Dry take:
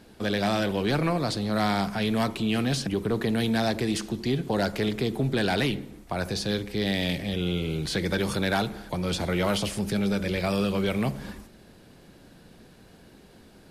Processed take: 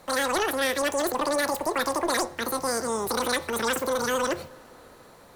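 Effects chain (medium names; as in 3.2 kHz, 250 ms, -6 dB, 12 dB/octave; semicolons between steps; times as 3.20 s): wide varispeed 2.56×; on a send: reverberation RT60 5.3 s, pre-delay 45 ms, DRR 23 dB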